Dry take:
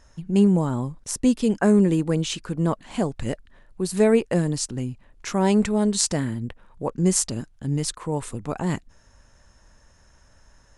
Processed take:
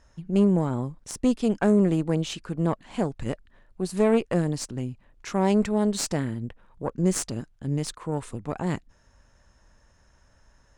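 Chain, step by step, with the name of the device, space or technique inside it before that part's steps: tube preamp driven hard (tube stage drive 13 dB, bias 0.65; high shelf 6300 Hz -6.5 dB)

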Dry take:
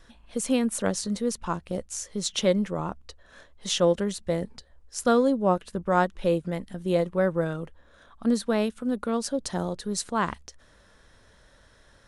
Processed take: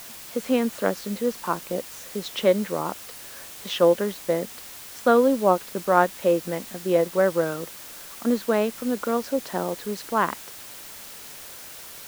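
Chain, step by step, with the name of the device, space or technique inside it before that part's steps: wax cylinder (BPF 270–2600 Hz; wow and flutter 27 cents; white noise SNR 16 dB); gain +4.5 dB

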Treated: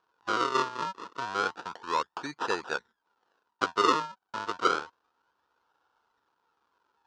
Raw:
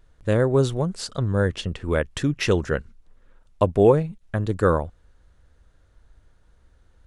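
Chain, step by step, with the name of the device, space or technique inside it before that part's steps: circuit-bent sampling toy (decimation with a swept rate 39×, swing 100% 0.3 Hz; speaker cabinet 520–5800 Hz, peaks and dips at 600 Hz -9 dB, 940 Hz +10 dB, 1400 Hz +10 dB, 2100 Hz -9 dB); gain -5 dB

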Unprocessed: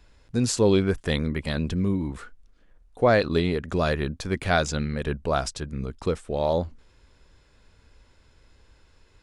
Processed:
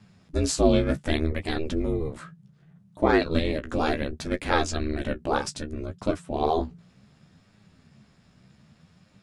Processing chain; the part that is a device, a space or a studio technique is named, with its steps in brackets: alien voice (ring modulator 160 Hz; flange 0.66 Hz, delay 9.3 ms, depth 7.9 ms, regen +25%); gain +5.5 dB

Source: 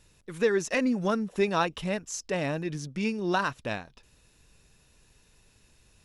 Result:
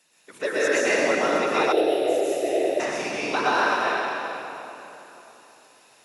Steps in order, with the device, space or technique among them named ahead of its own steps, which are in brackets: whispering ghost (whisperiser; HPF 500 Hz 12 dB/oct; reverb RT60 3.4 s, pre-delay 0.108 s, DRR -9 dB); 1.72–2.8 EQ curve 110 Hz 0 dB, 200 Hz -14 dB, 350 Hz +10 dB, 680 Hz +2 dB, 1000 Hz -24 dB, 3500 Hz -3 dB, 6300 Hz -15 dB, 12000 Hz +8 dB

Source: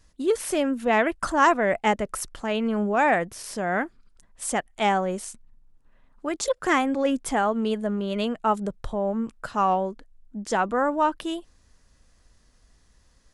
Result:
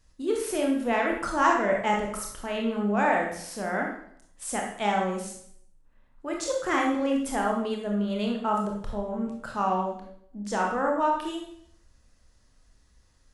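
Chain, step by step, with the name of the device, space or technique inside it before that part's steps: bathroom (reverb RT60 0.65 s, pre-delay 22 ms, DRR 0 dB); gain -6 dB

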